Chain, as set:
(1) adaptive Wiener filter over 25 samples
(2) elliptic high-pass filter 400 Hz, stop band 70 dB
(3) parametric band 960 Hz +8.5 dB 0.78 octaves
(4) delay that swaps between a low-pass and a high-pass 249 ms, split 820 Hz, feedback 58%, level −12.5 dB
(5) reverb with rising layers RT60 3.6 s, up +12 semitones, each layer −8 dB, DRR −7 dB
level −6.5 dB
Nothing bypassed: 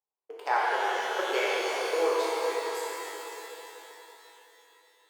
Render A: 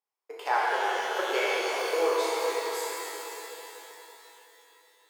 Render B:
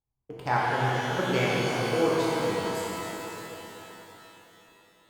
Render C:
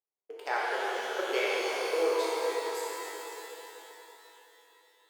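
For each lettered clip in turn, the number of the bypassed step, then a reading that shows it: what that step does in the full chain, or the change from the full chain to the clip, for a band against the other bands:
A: 1, 8 kHz band +2.5 dB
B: 2, 250 Hz band +11.0 dB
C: 3, 1 kHz band −3.5 dB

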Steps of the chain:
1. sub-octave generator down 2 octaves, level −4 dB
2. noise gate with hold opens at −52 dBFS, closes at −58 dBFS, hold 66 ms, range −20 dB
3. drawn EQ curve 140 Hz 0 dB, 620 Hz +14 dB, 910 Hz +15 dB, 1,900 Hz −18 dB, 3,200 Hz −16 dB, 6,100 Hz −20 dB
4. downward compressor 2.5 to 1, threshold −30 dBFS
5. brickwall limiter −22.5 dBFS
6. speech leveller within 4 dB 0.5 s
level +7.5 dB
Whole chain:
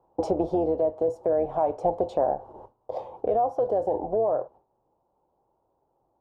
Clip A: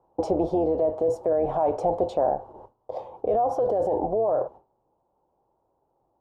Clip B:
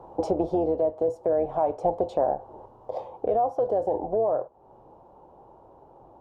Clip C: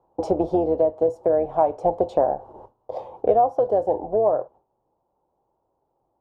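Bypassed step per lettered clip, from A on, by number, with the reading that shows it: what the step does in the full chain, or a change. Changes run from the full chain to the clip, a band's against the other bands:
4, average gain reduction 9.5 dB
2, change in momentary loudness spread +2 LU
5, average gain reduction 1.5 dB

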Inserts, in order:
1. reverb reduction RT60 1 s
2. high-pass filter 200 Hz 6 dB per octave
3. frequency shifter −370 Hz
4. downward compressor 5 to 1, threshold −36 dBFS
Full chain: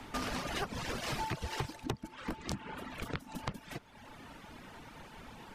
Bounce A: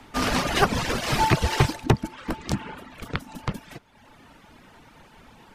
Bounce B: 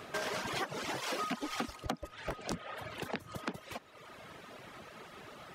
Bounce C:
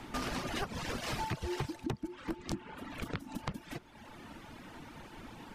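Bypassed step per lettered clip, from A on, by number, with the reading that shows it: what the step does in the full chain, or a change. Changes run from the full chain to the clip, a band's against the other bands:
4, average gain reduction 9.0 dB
3, 125 Hz band −6.5 dB
2, 250 Hz band +3.0 dB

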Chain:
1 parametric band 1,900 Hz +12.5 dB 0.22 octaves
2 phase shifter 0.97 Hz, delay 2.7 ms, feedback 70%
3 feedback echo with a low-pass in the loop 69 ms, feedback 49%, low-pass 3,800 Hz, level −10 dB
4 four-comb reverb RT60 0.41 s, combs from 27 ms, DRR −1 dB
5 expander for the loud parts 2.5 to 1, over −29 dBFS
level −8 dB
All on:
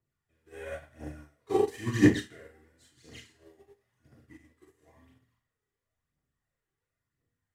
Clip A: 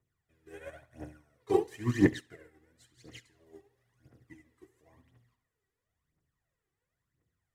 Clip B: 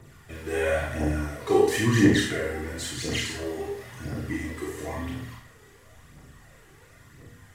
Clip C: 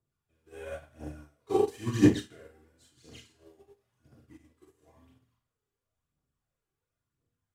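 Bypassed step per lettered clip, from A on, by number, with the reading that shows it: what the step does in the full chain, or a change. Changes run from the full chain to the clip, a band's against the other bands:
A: 4, 8 kHz band −3.5 dB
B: 5, 4 kHz band +5.5 dB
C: 1, 2 kHz band −6.5 dB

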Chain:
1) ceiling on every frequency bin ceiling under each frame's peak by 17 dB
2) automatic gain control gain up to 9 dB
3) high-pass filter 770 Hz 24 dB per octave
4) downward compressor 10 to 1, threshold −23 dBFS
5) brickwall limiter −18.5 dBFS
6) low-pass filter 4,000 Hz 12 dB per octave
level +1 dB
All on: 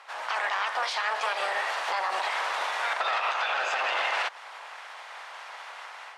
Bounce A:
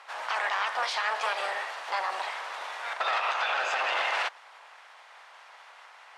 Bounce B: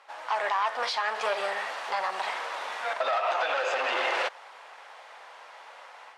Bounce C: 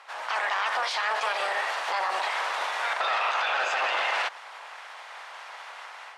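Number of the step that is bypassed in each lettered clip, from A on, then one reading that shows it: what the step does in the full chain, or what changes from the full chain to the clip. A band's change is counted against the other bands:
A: 2, change in momentary loudness spread −8 LU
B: 1, 500 Hz band +7.0 dB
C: 4, average gain reduction 3.5 dB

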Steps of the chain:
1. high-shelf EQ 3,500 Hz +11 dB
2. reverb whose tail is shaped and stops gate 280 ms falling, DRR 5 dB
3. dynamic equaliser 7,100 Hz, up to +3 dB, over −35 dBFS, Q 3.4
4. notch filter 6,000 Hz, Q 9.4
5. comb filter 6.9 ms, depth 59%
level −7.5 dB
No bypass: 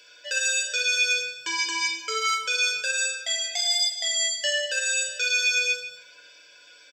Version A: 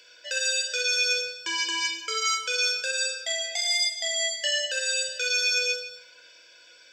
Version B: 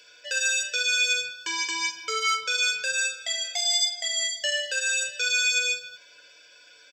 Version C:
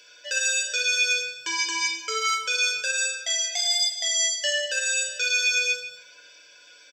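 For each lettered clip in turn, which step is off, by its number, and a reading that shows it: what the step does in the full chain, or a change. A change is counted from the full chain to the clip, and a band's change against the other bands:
5, 500 Hz band +4.0 dB
2, change in momentary loudness spread +1 LU
4, 8 kHz band +2.0 dB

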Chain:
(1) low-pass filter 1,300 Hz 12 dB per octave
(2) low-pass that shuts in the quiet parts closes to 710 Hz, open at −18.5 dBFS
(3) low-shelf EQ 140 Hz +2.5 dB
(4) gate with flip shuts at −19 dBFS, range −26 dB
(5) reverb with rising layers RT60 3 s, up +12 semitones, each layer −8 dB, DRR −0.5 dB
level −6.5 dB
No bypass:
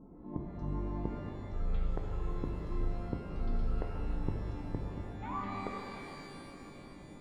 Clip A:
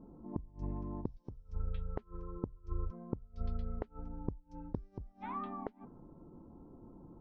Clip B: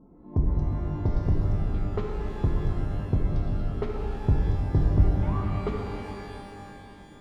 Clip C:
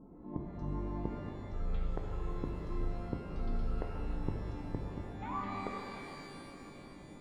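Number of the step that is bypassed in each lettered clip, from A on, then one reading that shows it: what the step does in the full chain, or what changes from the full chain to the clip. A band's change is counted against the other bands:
5, 2 kHz band −7.0 dB
4, change in momentary loudness spread +5 LU
3, 125 Hz band −1.5 dB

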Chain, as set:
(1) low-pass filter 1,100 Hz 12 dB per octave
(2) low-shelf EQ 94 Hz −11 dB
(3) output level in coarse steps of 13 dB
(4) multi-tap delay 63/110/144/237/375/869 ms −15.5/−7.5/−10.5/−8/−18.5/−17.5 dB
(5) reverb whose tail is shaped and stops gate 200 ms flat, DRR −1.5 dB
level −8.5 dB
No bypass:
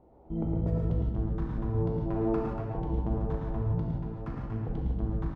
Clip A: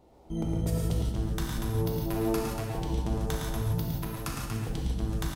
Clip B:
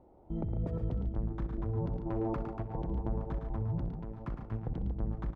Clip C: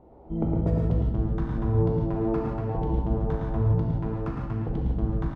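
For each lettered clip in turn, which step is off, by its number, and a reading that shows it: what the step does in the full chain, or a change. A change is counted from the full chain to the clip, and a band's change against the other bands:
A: 1, 2 kHz band +10.0 dB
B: 5, echo-to-direct ratio 4.5 dB to −3.0 dB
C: 3, change in integrated loudness +5.0 LU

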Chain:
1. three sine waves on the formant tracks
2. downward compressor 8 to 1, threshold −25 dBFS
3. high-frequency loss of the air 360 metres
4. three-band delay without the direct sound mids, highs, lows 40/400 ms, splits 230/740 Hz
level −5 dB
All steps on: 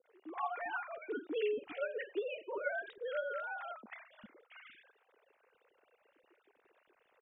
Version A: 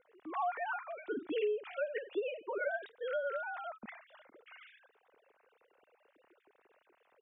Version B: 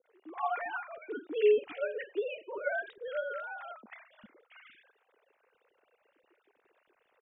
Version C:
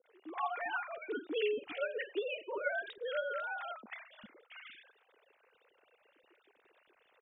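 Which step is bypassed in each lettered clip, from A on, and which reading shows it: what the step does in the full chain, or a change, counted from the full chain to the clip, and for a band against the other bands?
4, echo-to-direct ratio 8.5 dB to none audible
2, average gain reduction 1.5 dB
3, 2 kHz band +2.0 dB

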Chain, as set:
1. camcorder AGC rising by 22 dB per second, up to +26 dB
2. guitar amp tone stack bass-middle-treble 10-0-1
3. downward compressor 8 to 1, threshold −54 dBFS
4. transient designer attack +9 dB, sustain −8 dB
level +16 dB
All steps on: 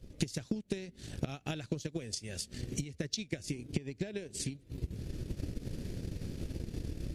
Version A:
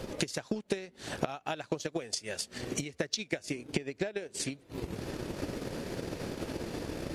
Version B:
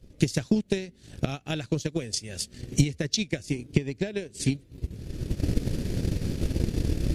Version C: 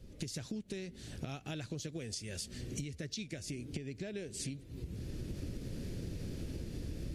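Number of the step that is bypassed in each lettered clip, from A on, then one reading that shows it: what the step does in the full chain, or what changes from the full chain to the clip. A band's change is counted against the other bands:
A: 2, 125 Hz band −9.0 dB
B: 3, change in momentary loudness spread +4 LU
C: 4, change in crest factor −5.5 dB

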